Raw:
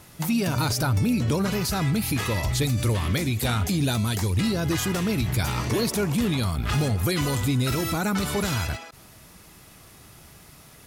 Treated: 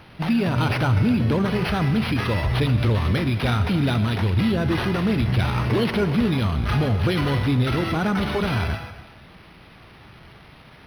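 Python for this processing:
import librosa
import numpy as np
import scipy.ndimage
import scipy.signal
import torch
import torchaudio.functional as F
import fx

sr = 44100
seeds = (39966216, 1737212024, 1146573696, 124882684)

y = fx.rev_gated(x, sr, seeds[0], gate_ms=330, shape='flat', drr_db=10.0)
y = np.interp(np.arange(len(y)), np.arange(len(y))[::6], y[::6])
y = y * 10.0 ** (3.0 / 20.0)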